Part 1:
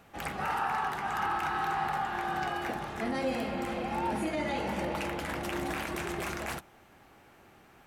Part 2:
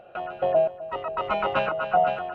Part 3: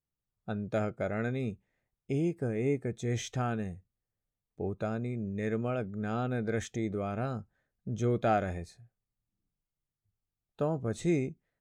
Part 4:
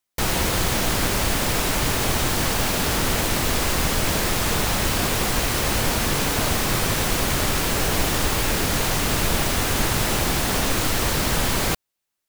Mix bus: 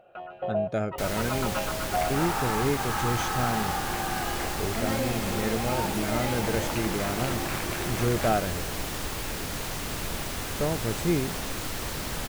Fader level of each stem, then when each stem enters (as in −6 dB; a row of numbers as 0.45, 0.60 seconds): +0.5, −7.5, +2.5, −11.0 decibels; 1.75, 0.00, 0.00, 0.80 seconds